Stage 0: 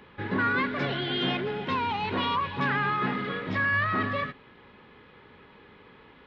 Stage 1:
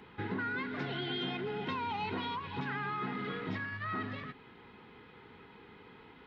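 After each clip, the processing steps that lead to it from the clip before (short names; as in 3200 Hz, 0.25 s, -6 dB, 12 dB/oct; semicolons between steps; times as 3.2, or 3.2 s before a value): compressor, threshold -32 dBFS, peak gain reduction 9.5 dB; notch comb 570 Hz; gain -1 dB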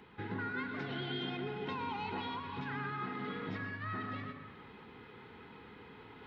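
reverb RT60 0.85 s, pre-delay 0.103 s, DRR 5.5 dB; reverse; upward compressor, threshold -42 dBFS; reverse; gain -4 dB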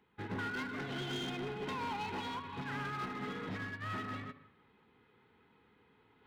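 hard clip -38 dBFS, distortion -12 dB; upward expander 2.5:1, over -52 dBFS; gain +4 dB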